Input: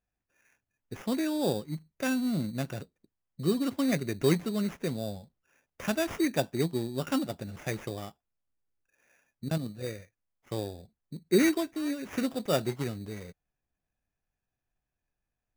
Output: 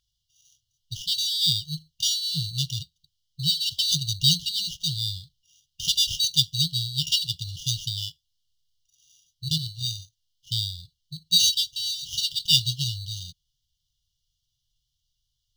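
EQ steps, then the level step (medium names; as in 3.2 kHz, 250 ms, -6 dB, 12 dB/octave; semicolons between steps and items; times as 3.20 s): brick-wall FIR band-stop 160–2800 Hz; high-order bell 2.6 kHz +13.5 dB 2.7 oct; +7.5 dB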